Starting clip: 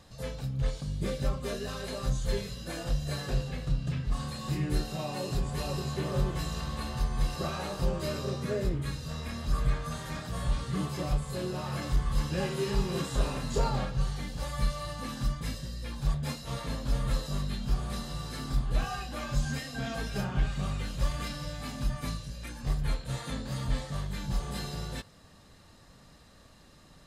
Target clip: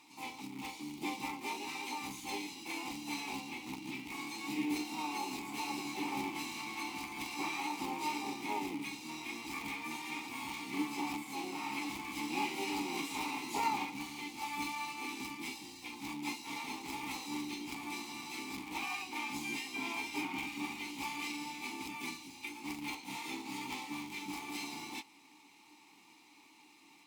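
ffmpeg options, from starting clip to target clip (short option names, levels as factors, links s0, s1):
-filter_complex "[0:a]asplit=4[s0][s1][s2][s3];[s1]asetrate=55563,aresample=44100,atempo=0.793701,volume=0.178[s4];[s2]asetrate=66075,aresample=44100,atempo=0.66742,volume=0.631[s5];[s3]asetrate=88200,aresample=44100,atempo=0.5,volume=0.316[s6];[s0][s4][s5][s6]amix=inputs=4:normalize=0,tiltshelf=f=970:g=-4,acrusher=bits=3:mode=log:mix=0:aa=0.000001,asplit=3[s7][s8][s9];[s7]bandpass=f=300:t=q:w=8,volume=1[s10];[s8]bandpass=f=870:t=q:w=8,volume=0.501[s11];[s9]bandpass=f=2240:t=q:w=8,volume=0.355[s12];[s10][s11][s12]amix=inputs=3:normalize=0,aemphasis=mode=production:type=riaa,volume=3.16"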